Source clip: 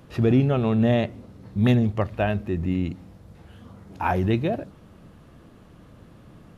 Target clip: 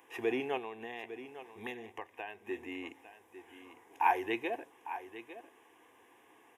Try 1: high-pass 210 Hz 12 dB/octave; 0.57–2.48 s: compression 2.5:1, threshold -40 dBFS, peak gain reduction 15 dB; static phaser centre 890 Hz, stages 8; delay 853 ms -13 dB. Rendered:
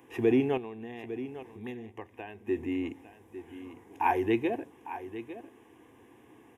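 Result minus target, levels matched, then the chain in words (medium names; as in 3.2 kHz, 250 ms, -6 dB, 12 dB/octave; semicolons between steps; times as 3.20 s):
250 Hz band +5.5 dB
high-pass 620 Hz 12 dB/octave; 0.57–2.48 s: compression 2.5:1, threshold -40 dBFS, peak gain reduction 12 dB; static phaser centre 890 Hz, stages 8; delay 853 ms -13 dB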